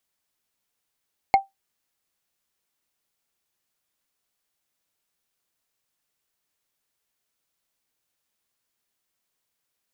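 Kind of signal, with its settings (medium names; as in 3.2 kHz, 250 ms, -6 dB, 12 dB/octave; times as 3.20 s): wood hit, lowest mode 783 Hz, decay 0.16 s, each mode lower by 8.5 dB, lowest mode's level -8 dB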